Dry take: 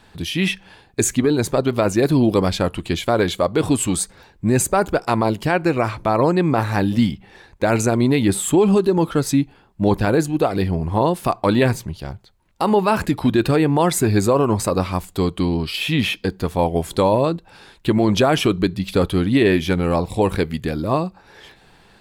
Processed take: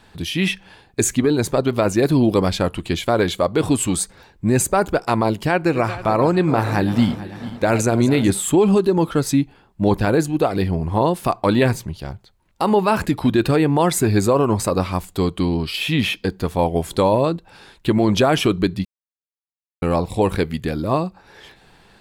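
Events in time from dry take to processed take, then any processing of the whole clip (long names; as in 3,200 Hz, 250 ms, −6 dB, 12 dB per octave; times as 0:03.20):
0:05.51–0:08.32: feedback delay that plays each chunk backwards 221 ms, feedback 63%, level −13 dB
0:18.85–0:19.82: silence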